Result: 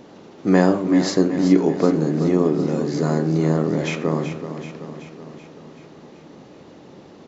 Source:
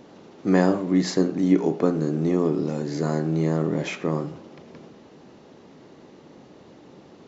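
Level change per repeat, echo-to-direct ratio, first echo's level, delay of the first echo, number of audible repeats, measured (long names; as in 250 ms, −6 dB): −4.5 dB, −8.0 dB, −10.0 dB, 380 ms, 6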